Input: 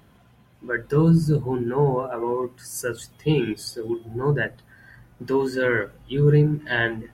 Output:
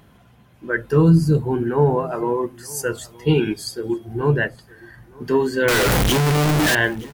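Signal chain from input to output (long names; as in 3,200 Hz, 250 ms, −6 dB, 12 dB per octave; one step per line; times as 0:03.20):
0:05.68–0:06.75: sign of each sample alone
single-tap delay 921 ms −23 dB
level +3.5 dB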